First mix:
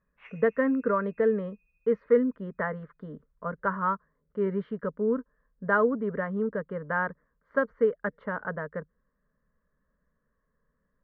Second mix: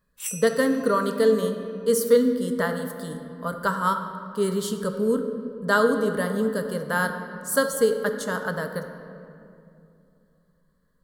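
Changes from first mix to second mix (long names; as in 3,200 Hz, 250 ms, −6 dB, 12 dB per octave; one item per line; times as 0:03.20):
speech: send on
master: remove elliptic low-pass filter 2,200 Hz, stop band 80 dB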